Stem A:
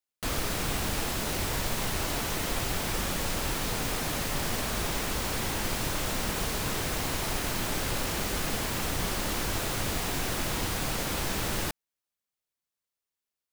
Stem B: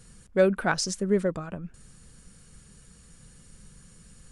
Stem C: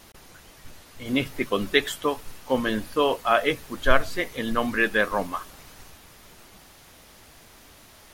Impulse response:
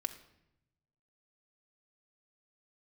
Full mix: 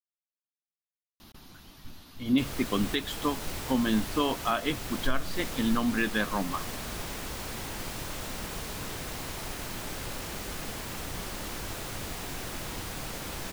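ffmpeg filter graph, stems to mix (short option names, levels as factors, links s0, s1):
-filter_complex "[0:a]adelay=2150,volume=0.473[s0];[2:a]equalizer=f=250:t=o:w=1:g=6,equalizer=f=500:t=o:w=1:g=-10,equalizer=f=2000:t=o:w=1:g=-7,equalizer=f=4000:t=o:w=1:g=4,equalizer=f=8000:t=o:w=1:g=-10,adelay=1200,volume=1[s1];[s0][s1]amix=inputs=2:normalize=0,alimiter=limit=0.168:level=0:latency=1:release=269"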